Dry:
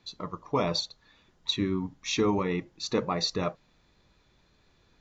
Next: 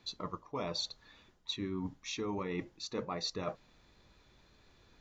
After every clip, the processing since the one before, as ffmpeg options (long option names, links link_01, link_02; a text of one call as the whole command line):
ffmpeg -i in.wav -af "equalizer=frequency=160:width_type=o:width=0.35:gain=-4,areverse,acompressor=threshold=-36dB:ratio=6,areverse,volume=1dB" out.wav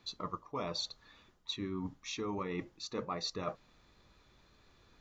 ffmpeg -i in.wav -af "equalizer=frequency=1200:width=5.9:gain=5,volume=-1dB" out.wav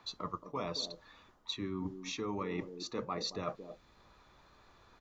ffmpeg -i in.wav -filter_complex "[0:a]acrossover=split=170|770|1200[link_01][link_02][link_03][link_04];[link_02]aecho=1:1:225:0.473[link_05];[link_03]acompressor=mode=upward:threshold=-56dB:ratio=2.5[link_06];[link_01][link_05][link_06][link_04]amix=inputs=4:normalize=0" out.wav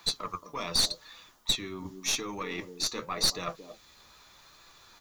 ffmpeg -i in.wav -af "flanger=delay=5.9:depth=7.1:regen=53:speed=0.86:shape=sinusoidal,crystalizer=i=8.5:c=0,aeval=exprs='0.188*(cos(1*acos(clip(val(0)/0.188,-1,1)))-cos(1*PI/2))+0.0473*(cos(4*acos(clip(val(0)/0.188,-1,1)))-cos(4*PI/2))+0.0168*(cos(5*acos(clip(val(0)/0.188,-1,1)))-cos(5*PI/2))':channel_layout=same" out.wav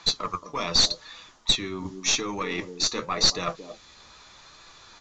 ffmpeg -i in.wav -af "volume=6dB" -ar 16000 -c:a pcm_alaw out.wav